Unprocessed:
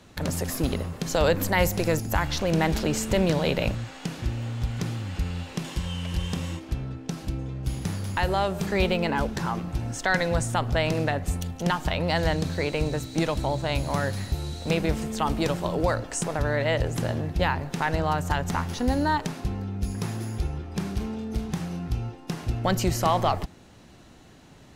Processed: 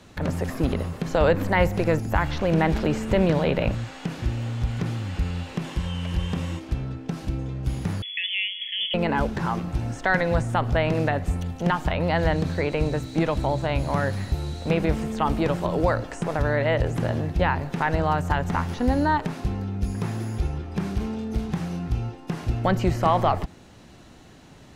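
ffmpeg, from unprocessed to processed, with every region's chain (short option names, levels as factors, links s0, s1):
-filter_complex "[0:a]asettb=1/sr,asplit=3[s0][s1][s2];[s0]atrim=end=8.024[s3];[s1]atrim=start=8.02:end=8.94,asetpts=PTS-STARTPTS,afade=t=in:d=0.004:c=qsin,afade=t=out:st=0.916:d=0.004:c=qsin,asuperstop=centerf=2500:order=12:qfactor=1.1,lowpass=f=3000:t=q:w=0.5098,lowpass=f=3000:t=q:w=0.6013,lowpass=f=3000:t=q:w=0.9,lowpass=f=3000:t=q:w=2.563,afreqshift=-3500[s4];[s2]atrim=start=8.936[s5];[s3][s4]acrossfade=d=0.004:c1=hsin:c2=qsin[s6];[s6][s5]acrossfade=d=0.004:c1=qsin:c2=hsin,acrossover=split=2800[s7][s8];[s8]acompressor=threshold=0.00447:ratio=4:attack=1:release=60[s9];[s7][s9]amix=inputs=2:normalize=0,highshelf=f=12000:g=-4,volume=1.33"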